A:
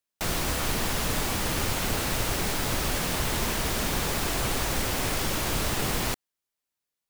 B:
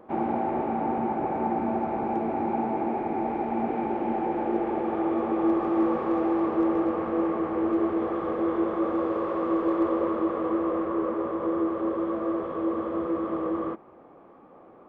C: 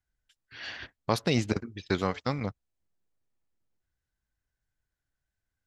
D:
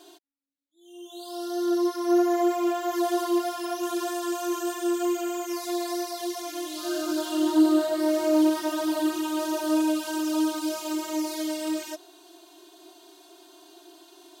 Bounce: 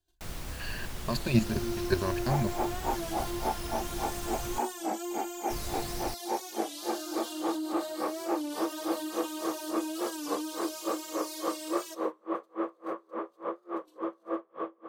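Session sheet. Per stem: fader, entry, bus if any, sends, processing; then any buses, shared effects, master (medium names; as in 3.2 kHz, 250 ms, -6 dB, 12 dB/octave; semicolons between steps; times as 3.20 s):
-15.0 dB, 0.00 s, muted 4.59–5.50 s, no send, none
+2.0 dB, 2.05 s, no send, Bessel high-pass 550 Hz, order 2; logarithmic tremolo 3.5 Hz, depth 39 dB
-1.5 dB, 0.00 s, no send, rippled EQ curve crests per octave 1.4, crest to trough 16 dB; level held to a coarse grid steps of 10 dB
-12.0 dB, 0.00 s, no send, gate -47 dBFS, range -29 dB; treble shelf 2.2 kHz +9.5 dB; peak limiter -17.5 dBFS, peak gain reduction 7.5 dB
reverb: none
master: bass shelf 120 Hz +9.5 dB; warped record 33 1/3 rpm, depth 100 cents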